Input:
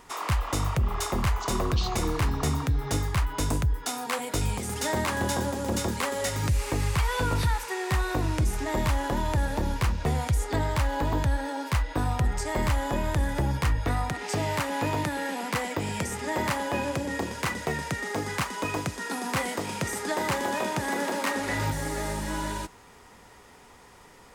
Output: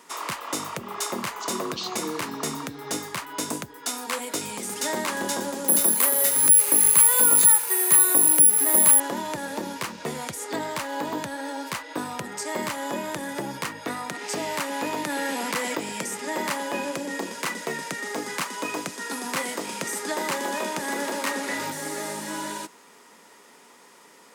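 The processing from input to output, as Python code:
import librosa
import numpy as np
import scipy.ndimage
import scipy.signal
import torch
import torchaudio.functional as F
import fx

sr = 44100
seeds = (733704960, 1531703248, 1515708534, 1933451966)

y = fx.resample_bad(x, sr, factor=4, down='filtered', up='zero_stuff', at=(5.68, 9.0))
y = fx.env_flatten(y, sr, amount_pct=50, at=(15.09, 15.8))
y = scipy.signal.sosfilt(scipy.signal.butter(4, 200.0, 'highpass', fs=sr, output='sos'), y)
y = fx.peak_eq(y, sr, hz=10000.0, db=4.5, octaves=2.2)
y = fx.notch(y, sr, hz=760.0, q=12.0)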